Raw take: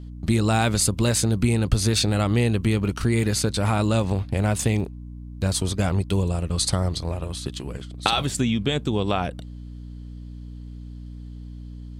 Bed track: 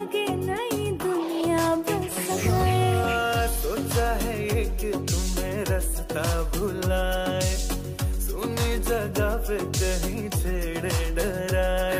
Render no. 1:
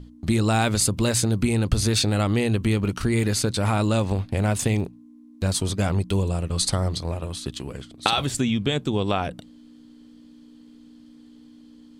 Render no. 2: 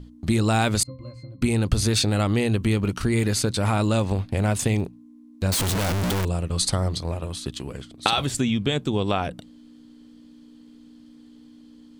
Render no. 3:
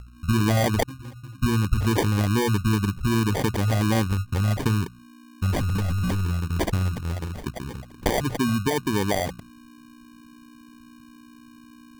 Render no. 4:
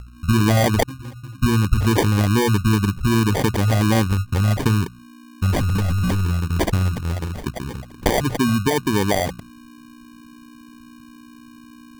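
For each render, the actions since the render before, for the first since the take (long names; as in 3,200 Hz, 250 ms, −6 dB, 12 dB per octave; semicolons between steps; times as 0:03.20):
mains-hum notches 60/120/180 Hz
0:00.83–0:01.42: resonances in every octave C, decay 0.28 s; 0:05.52–0:06.25: sign of each sample alone
spectral envelope exaggerated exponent 3; decimation without filtering 33×
level +4.5 dB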